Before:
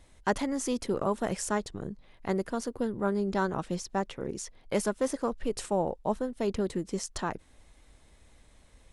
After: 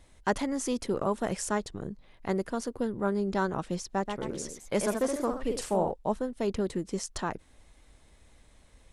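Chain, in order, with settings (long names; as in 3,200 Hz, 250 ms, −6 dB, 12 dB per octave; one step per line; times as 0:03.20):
0:03.91–0:05.92: delay with pitch and tempo change per echo 134 ms, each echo +1 semitone, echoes 2, each echo −6 dB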